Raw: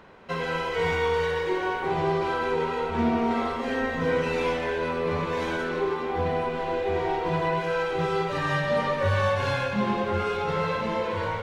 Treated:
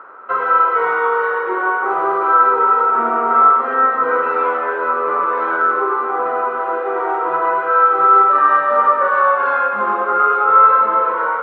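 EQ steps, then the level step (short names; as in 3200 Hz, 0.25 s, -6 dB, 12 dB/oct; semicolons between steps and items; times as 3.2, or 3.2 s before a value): HPF 320 Hz 24 dB/oct; synth low-pass 1300 Hz, resonance Q 14; +4.0 dB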